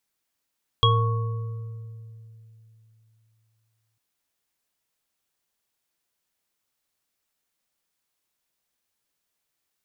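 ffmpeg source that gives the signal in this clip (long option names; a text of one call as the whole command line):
ffmpeg -f lavfi -i "aevalsrc='0.141*pow(10,-3*t/3.26)*sin(2*PI*111*t)+0.0596*pow(10,-3*t/1.94)*sin(2*PI*464*t)+0.133*pow(10,-3*t/1.21)*sin(2*PI*1110*t)+0.188*pow(10,-3*t/0.22)*sin(2*PI*3300*t)':duration=3.15:sample_rate=44100" out.wav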